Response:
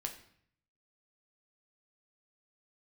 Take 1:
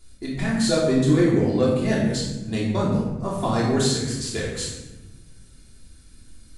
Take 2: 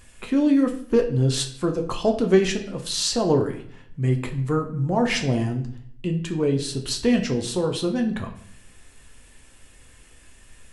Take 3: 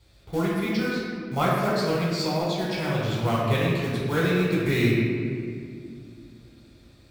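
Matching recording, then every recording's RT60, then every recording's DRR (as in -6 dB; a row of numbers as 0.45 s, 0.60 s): 2; 1.1 s, 0.60 s, 2.3 s; -6.5 dB, 3.0 dB, -6.5 dB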